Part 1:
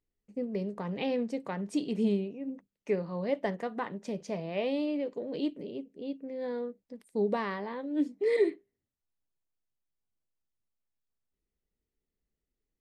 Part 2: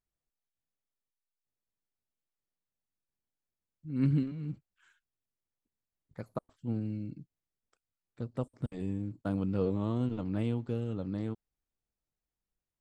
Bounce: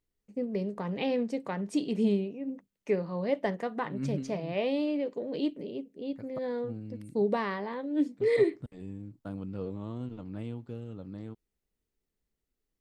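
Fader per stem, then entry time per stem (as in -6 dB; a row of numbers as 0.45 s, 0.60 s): +1.5 dB, -6.5 dB; 0.00 s, 0.00 s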